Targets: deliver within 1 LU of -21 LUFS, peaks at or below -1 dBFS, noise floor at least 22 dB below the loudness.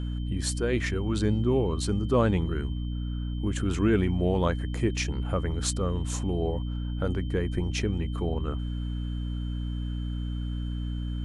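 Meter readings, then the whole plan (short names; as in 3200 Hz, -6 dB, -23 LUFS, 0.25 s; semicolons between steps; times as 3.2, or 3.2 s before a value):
hum 60 Hz; harmonics up to 300 Hz; hum level -29 dBFS; steady tone 3100 Hz; tone level -50 dBFS; loudness -29.0 LUFS; peak -12.5 dBFS; loudness target -21.0 LUFS
-> de-hum 60 Hz, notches 5; notch 3100 Hz, Q 30; gain +8 dB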